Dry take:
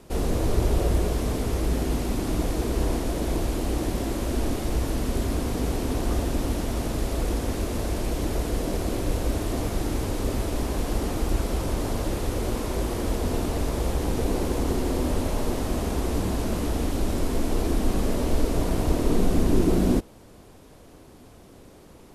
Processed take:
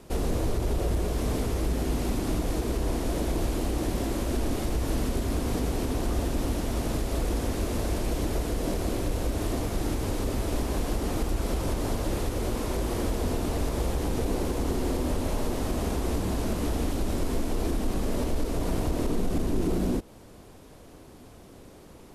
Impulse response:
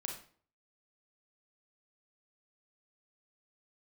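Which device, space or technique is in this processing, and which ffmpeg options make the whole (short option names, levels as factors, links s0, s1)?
soft clipper into limiter: -af "asoftclip=type=tanh:threshold=0.299,alimiter=limit=0.119:level=0:latency=1:release=155"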